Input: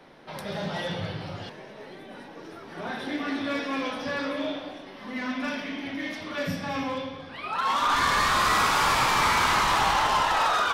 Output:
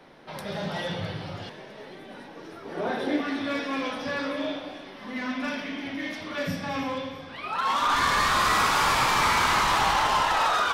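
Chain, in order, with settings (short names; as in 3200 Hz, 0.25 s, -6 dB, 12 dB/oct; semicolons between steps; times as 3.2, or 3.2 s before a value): 2.65–3.21 bell 460 Hz +10 dB 1.4 oct; thin delay 0.329 s, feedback 59%, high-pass 1500 Hz, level -15.5 dB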